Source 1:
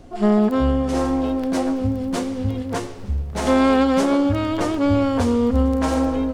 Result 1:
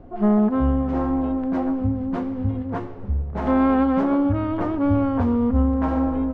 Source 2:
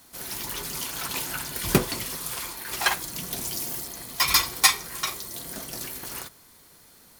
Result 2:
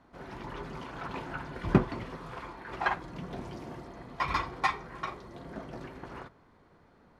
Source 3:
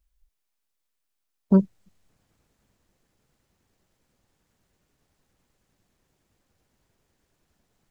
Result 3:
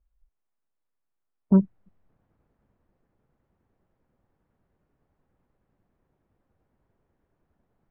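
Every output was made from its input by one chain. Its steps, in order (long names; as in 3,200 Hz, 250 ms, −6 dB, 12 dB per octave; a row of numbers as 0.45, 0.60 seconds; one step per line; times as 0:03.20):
low-pass filter 1,300 Hz 12 dB per octave
dynamic equaliser 490 Hz, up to −6 dB, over −36 dBFS, Q 1.9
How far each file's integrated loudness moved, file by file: −1.5, −9.0, −0.5 LU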